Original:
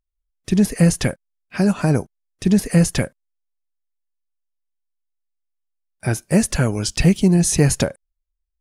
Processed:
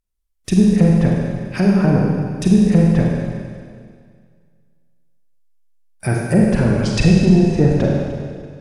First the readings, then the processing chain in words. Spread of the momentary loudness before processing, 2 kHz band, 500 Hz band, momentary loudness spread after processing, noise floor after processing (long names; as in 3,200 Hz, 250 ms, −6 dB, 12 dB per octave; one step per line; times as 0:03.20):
10 LU, +0.5 dB, +4.0 dB, 13 LU, −63 dBFS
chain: treble cut that deepens with the level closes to 920 Hz, closed at −13.5 dBFS
high-shelf EQ 6,100 Hz +6 dB
in parallel at −9.5 dB: soft clipping −12.5 dBFS, distortion −12 dB
on the sum: four-comb reverb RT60 2 s, combs from 33 ms, DRR −2 dB
level −1.5 dB